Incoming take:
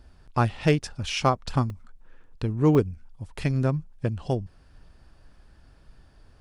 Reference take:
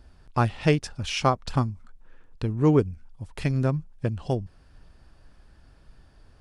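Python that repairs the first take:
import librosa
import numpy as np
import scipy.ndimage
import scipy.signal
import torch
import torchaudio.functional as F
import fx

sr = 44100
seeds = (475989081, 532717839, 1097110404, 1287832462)

y = fx.fix_declip(x, sr, threshold_db=-10.0)
y = fx.fix_interpolate(y, sr, at_s=(1.7, 2.75), length_ms=1.3)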